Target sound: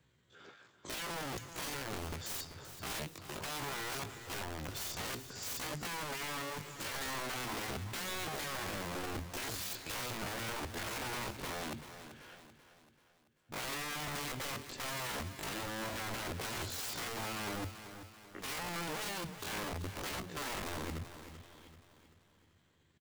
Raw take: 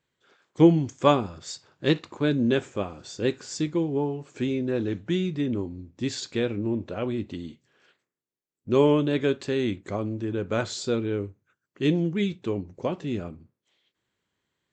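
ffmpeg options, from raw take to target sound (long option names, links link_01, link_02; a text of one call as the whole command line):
ffmpeg -i in.wav -filter_complex "[0:a]acrossover=split=320|570|2600[link_01][link_02][link_03][link_04];[link_01]asoftclip=type=tanh:threshold=-20.5dB[link_05];[link_05][link_02][link_03][link_04]amix=inputs=4:normalize=0,acompressor=threshold=-39dB:ratio=5,equalizer=frequency=94:width_type=o:width=2:gain=10,aeval=exprs='(mod(94.4*val(0)+1,2)-1)/94.4':channel_layout=same,atempo=0.64,aecho=1:1:386|772|1158|1544|1930:0.266|0.125|0.0588|0.0276|0.013,volume=4.5dB" out.wav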